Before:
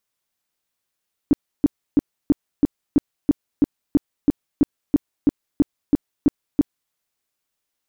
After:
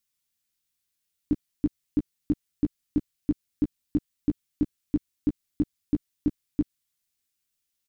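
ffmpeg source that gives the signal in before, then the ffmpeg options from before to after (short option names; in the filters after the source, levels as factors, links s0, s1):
-f lavfi -i "aevalsrc='0.335*sin(2*PI*289*mod(t,0.33))*lt(mod(t,0.33),6/289)':d=5.61:s=44100"
-filter_complex "[0:a]equalizer=f=690:t=o:w=2.5:g=-14.5,asplit=2[s0][s1];[s1]adelay=13,volume=0.376[s2];[s0][s2]amix=inputs=2:normalize=0"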